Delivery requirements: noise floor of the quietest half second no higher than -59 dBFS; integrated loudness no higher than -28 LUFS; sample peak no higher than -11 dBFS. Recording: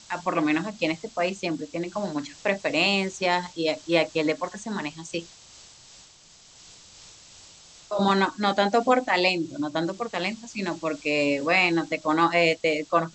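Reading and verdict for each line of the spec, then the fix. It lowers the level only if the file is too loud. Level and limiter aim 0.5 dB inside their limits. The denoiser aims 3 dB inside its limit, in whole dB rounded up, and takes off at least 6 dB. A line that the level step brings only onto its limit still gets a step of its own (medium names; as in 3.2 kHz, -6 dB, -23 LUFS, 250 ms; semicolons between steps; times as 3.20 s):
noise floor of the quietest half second -53 dBFS: fail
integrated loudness -25.0 LUFS: fail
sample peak -6.5 dBFS: fail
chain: noise reduction 6 dB, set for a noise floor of -53 dBFS; trim -3.5 dB; peak limiter -11.5 dBFS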